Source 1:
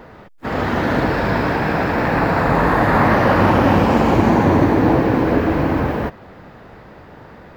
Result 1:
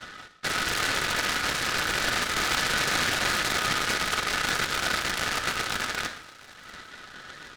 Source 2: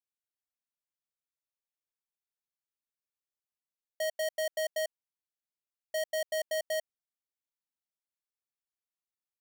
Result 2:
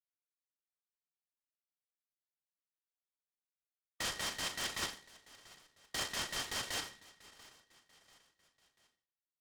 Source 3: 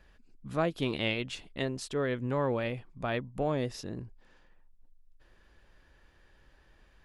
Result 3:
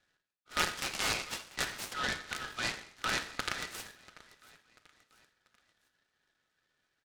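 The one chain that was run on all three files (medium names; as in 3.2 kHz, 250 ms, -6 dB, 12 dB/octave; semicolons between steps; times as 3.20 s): reverb removal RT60 1.2 s; gate -45 dBFS, range -14 dB; comb 6.1 ms, depth 51%; in parallel at -1 dB: peak limiter -13.5 dBFS; on the sum: compression 3:1, threshold -22 dBFS; integer overflow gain 17 dB; flange 0.32 Hz, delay 9.5 ms, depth 8.1 ms, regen -73%; brick-wall FIR high-pass 1.2 kHz; distance through air 140 m; on a send: feedback delay 689 ms, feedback 45%, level -20.5 dB; on the sum: simulated room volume 2600 m³, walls furnished, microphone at 1.9 m; delay time shaken by noise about 1.8 kHz, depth 0.069 ms; trim +5.5 dB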